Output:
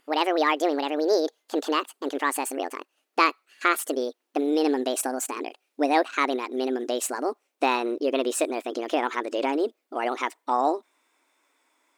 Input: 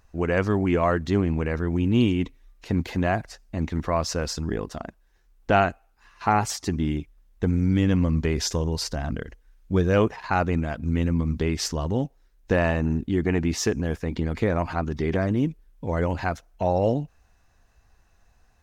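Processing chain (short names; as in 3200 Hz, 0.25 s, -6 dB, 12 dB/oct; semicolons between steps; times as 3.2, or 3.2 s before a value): speed glide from 179% -> 132%; brick-wall FIR high-pass 250 Hz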